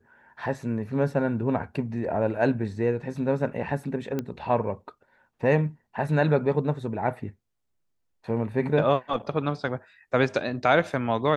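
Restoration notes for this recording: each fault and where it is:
4.19 pop -16 dBFS

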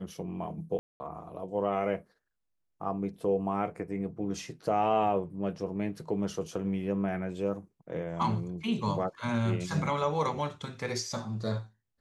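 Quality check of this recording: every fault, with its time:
0.79–1 gap 0.21 s

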